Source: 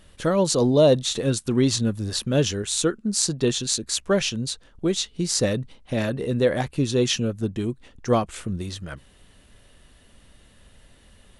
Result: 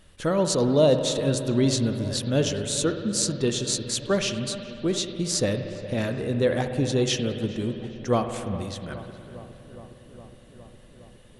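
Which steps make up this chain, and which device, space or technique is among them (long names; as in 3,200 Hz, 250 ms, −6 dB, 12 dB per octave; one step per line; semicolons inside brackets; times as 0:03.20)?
dub delay into a spring reverb (feedback echo with a low-pass in the loop 412 ms, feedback 79%, low-pass 2,300 Hz, level −16.5 dB; spring reverb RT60 2.7 s, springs 59 ms, chirp 50 ms, DRR 7 dB)
level −2.5 dB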